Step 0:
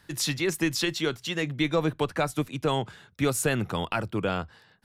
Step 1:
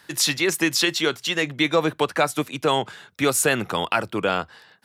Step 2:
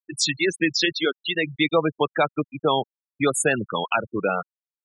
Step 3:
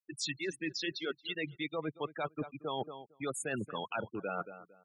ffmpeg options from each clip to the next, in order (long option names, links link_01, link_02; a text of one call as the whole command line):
ffmpeg -i in.wav -af "highpass=frequency=430:poles=1,volume=8dB" out.wav
ffmpeg -i in.wav -af "afftfilt=real='re*gte(hypot(re,im),0.141)':imag='im*gte(hypot(re,im),0.141)':win_size=1024:overlap=0.75" out.wav
ffmpeg -i in.wav -filter_complex "[0:a]asplit=2[link_01][link_02];[link_02]adelay=228,lowpass=frequency=1900:poles=1,volume=-20dB,asplit=2[link_03][link_04];[link_04]adelay=228,lowpass=frequency=1900:poles=1,volume=0.24[link_05];[link_01][link_03][link_05]amix=inputs=3:normalize=0,areverse,acompressor=threshold=-29dB:ratio=6,areverse,volume=-5dB" out.wav